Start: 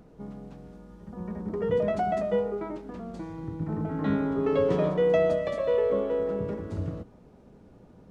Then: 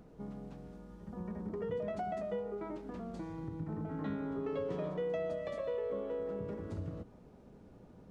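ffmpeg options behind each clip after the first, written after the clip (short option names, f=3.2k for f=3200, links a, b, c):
-af "acompressor=threshold=-35dB:ratio=2.5,volume=-3.5dB"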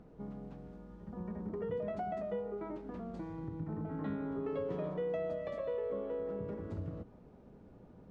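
-af "lowpass=f=2.5k:p=1"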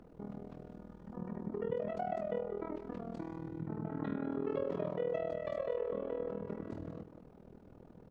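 -filter_complex "[0:a]acrossover=split=130[a][b];[a]acompressor=threshold=-59dB:ratio=6[c];[c][b]amix=inputs=2:normalize=0,aecho=1:1:184:0.224,tremolo=f=40:d=0.889,volume=4.5dB"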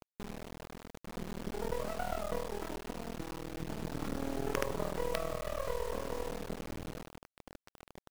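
-af "acrusher=bits=5:dc=4:mix=0:aa=0.000001,volume=4dB"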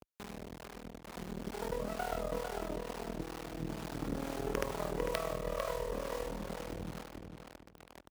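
-filter_complex "[0:a]highpass=42,acrossover=split=580[a][b];[a]aeval=exprs='val(0)*(1-0.5/2+0.5/2*cos(2*PI*2.2*n/s))':c=same[c];[b]aeval=exprs='val(0)*(1-0.5/2-0.5/2*cos(2*PI*2.2*n/s))':c=same[d];[c][d]amix=inputs=2:normalize=0,asplit=2[e][f];[f]adelay=449,lowpass=f=4.4k:p=1,volume=-6dB,asplit=2[g][h];[h]adelay=449,lowpass=f=4.4k:p=1,volume=0.19,asplit=2[i][j];[j]adelay=449,lowpass=f=4.4k:p=1,volume=0.19[k];[e][g][i][k]amix=inputs=4:normalize=0,volume=1.5dB"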